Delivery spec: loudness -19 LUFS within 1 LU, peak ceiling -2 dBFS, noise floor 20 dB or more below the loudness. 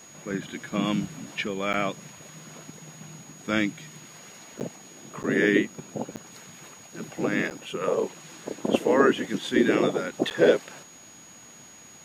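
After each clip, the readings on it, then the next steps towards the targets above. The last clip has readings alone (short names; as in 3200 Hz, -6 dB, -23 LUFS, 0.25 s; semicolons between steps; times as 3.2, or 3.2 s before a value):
dropouts 6; longest dropout 9.1 ms; steady tone 6700 Hz; tone level -48 dBFS; loudness -26.0 LUFS; peak -6.0 dBFS; loudness target -19.0 LUFS
-> interpolate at 1.73/4.6/5.23/6.16/7.5/10.3, 9.1 ms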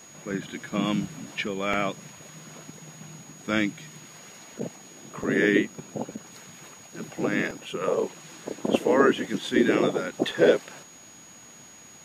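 dropouts 0; steady tone 6700 Hz; tone level -48 dBFS
-> notch 6700 Hz, Q 30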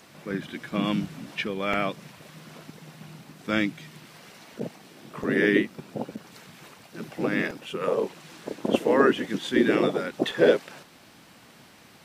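steady tone none; loudness -26.0 LUFS; peak -6.0 dBFS; loudness target -19.0 LUFS
-> gain +7 dB; limiter -2 dBFS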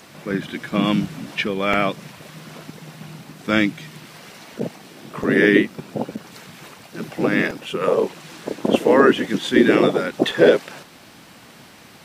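loudness -19.5 LUFS; peak -2.0 dBFS; noise floor -46 dBFS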